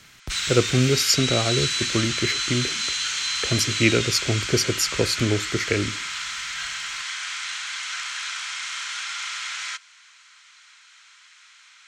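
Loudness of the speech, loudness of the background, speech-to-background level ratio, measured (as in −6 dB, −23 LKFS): −23.0 LKFS, −26.0 LKFS, 3.0 dB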